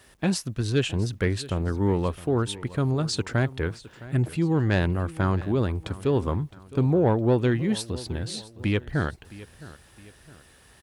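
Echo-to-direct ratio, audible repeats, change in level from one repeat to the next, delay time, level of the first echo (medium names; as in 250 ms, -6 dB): -17.5 dB, 2, -7.5 dB, 663 ms, -18.0 dB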